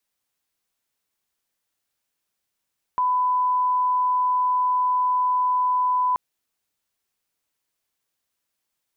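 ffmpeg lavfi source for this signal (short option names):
-f lavfi -i "sine=f=1000:d=3.18:r=44100,volume=0.06dB"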